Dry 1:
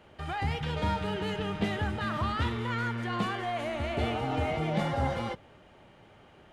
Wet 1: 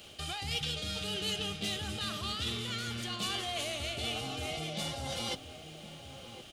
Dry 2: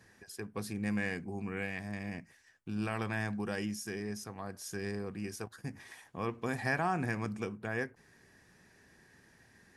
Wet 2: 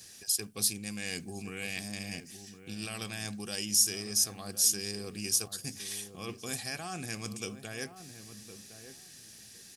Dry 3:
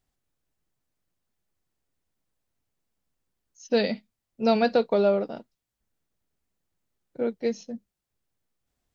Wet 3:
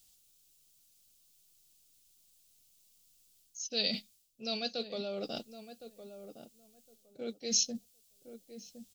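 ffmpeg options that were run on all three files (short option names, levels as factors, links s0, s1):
-filter_complex "[0:a]areverse,acompressor=threshold=0.0158:ratio=12,areverse,asuperstop=centerf=940:order=4:qfactor=6,asplit=2[s0][s1];[s1]adelay=1062,lowpass=f=990:p=1,volume=0.316,asplit=2[s2][s3];[s3]adelay=1062,lowpass=f=990:p=1,volume=0.19,asplit=2[s4][s5];[s5]adelay=1062,lowpass=f=990:p=1,volume=0.19[s6];[s0][s2][s4][s6]amix=inputs=4:normalize=0,aexciter=amount=8.6:drive=4.4:freq=2700"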